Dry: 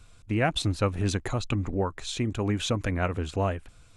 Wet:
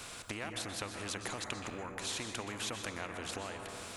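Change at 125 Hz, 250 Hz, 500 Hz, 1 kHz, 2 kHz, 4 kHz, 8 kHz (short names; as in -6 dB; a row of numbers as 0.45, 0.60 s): -20.5, -15.5, -13.5, -9.5, -6.5, -6.0, -1.5 dB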